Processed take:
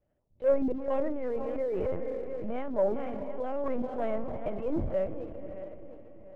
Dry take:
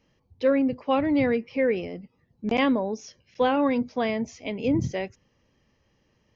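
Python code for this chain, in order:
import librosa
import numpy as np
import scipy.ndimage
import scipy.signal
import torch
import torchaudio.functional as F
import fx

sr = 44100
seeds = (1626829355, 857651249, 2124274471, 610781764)

y = fx.reverse_delay_fb(x, sr, ms=353, feedback_pct=51, wet_db=-13.5)
y = fx.low_shelf(y, sr, hz=95.0, db=3.0)
y = fx.hum_notches(y, sr, base_hz=50, count=3)
y = fx.lpc_vocoder(y, sr, seeds[0], excitation='pitch_kept', order=8)
y = scipy.signal.sosfilt(scipy.signal.butter(2, 1300.0, 'lowpass', fs=sr, output='sos'), y)
y = fx.echo_diffused(y, sr, ms=480, feedback_pct=46, wet_db=-15.0)
y = fx.over_compress(y, sr, threshold_db=-26.0, ratio=-1.0, at=(1.09, 3.66))
y = fx.leveller(y, sr, passes=1)
y = fx.transient(y, sr, attack_db=-5, sustain_db=4)
y = fx.peak_eq(y, sr, hz=600.0, db=10.5, octaves=0.33)
y = y * 10.0 ** (-8.5 / 20.0)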